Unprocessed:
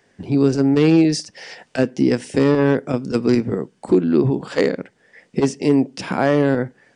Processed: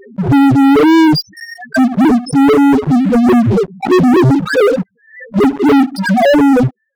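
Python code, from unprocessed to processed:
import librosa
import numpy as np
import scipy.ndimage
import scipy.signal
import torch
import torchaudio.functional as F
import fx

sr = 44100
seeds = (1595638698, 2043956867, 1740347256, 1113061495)

y = fx.spec_topn(x, sr, count=1)
y = fx.leveller(y, sr, passes=5)
y = fx.pre_swell(y, sr, db_per_s=120.0)
y = y * librosa.db_to_amplitude(7.0)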